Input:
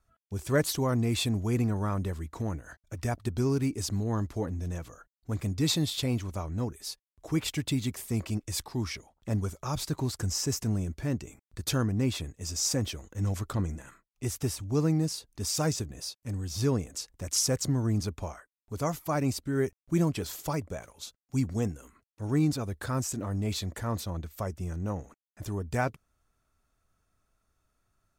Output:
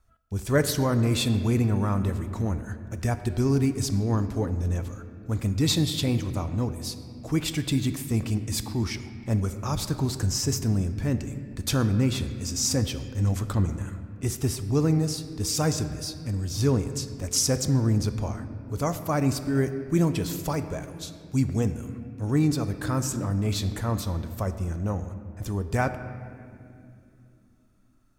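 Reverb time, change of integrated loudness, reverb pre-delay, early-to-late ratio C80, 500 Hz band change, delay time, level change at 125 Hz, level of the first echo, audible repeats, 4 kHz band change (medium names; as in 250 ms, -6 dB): 2.6 s, +4.5 dB, 4 ms, 11.0 dB, +3.5 dB, no echo, +5.5 dB, no echo, no echo, +3.5 dB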